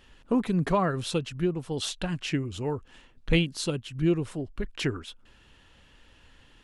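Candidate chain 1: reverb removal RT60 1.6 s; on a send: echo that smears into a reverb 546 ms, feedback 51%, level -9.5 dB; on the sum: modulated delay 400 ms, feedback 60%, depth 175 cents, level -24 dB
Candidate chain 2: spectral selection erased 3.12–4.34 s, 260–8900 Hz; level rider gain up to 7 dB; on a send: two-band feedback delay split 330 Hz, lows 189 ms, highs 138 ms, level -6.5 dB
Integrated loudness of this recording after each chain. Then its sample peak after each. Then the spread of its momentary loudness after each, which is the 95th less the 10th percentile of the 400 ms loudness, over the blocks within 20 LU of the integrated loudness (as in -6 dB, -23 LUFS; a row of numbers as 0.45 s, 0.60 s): -30.0 LUFS, -23.0 LUFS; -11.0 dBFS, -6.0 dBFS; 17 LU, 12 LU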